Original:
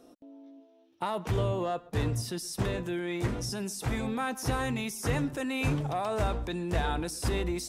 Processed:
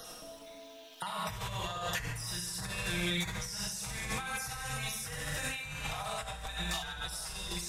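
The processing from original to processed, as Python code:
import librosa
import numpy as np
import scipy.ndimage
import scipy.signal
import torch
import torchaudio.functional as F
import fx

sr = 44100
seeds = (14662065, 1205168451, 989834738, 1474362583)

y = fx.spec_dropout(x, sr, seeds[0], share_pct=29)
y = fx.tone_stack(y, sr, knobs='10-0-10')
y = fx.rev_schroeder(y, sr, rt60_s=1.2, comb_ms=31, drr_db=-2.5)
y = fx.over_compress(y, sr, threshold_db=-47.0, ratio=-1.0)
y = fx.peak_eq(y, sr, hz=210.0, db=6.0, octaves=0.55)
y = y + 0.5 * np.pad(y, (int(6.3 * sr / 1000.0), 0))[:len(y)]
y = y + 10.0 ** (-19.5 / 20.0) * np.pad(y, (int(1066 * sr / 1000.0), 0))[:len(y)]
y = fx.band_squash(y, sr, depth_pct=40)
y = y * librosa.db_to_amplitude(7.5)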